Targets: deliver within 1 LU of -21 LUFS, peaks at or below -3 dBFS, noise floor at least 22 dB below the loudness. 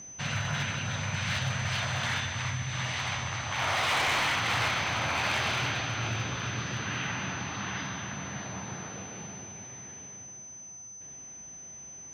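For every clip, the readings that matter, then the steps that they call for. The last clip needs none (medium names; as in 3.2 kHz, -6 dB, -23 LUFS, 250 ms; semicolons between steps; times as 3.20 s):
clipped samples 1.2%; clipping level -23.5 dBFS; steady tone 6.1 kHz; tone level -43 dBFS; loudness -30.5 LUFS; peak level -23.5 dBFS; loudness target -21.0 LUFS
-> clip repair -23.5 dBFS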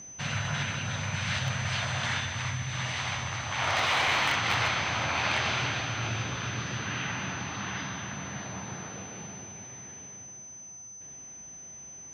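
clipped samples 0.0%; steady tone 6.1 kHz; tone level -43 dBFS
-> band-stop 6.1 kHz, Q 30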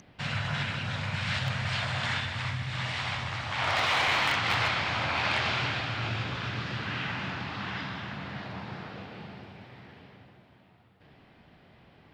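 steady tone not found; loudness -30.0 LUFS; peak level -14.5 dBFS; loudness target -21.0 LUFS
-> trim +9 dB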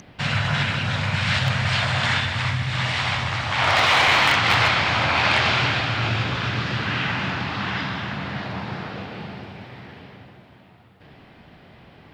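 loudness -21.0 LUFS; peak level -5.5 dBFS; noise floor -50 dBFS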